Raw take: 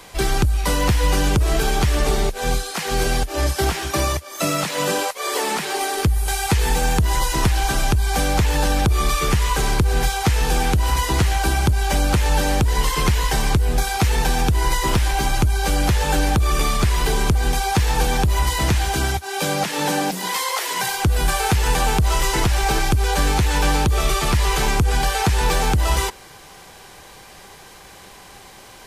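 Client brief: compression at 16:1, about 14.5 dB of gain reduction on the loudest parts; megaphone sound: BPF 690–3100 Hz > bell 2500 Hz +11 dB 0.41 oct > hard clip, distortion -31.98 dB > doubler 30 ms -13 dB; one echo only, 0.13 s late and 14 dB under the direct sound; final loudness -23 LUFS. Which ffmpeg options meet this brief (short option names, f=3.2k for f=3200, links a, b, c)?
-filter_complex "[0:a]acompressor=threshold=-28dB:ratio=16,highpass=690,lowpass=3.1k,equalizer=f=2.5k:t=o:w=0.41:g=11,aecho=1:1:130:0.2,asoftclip=type=hard:threshold=-21.5dB,asplit=2[a][b];[b]adelay=30,volume=-13dB[c];[a][c]amix=inputs=2:normalize=0,volume=12dB"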